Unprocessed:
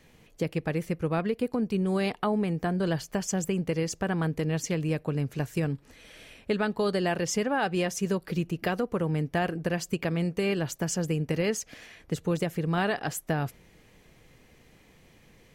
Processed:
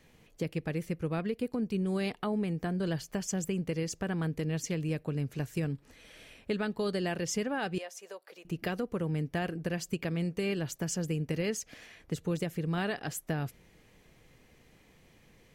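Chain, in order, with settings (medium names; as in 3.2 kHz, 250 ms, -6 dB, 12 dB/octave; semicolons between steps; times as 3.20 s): 7.78–8.45 s: ladder high-pass 500 Hz, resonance 40%; dynamic bell 900 Hz, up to -5 dB, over -41 dBFS, Q 0.86; trim -3.5 dB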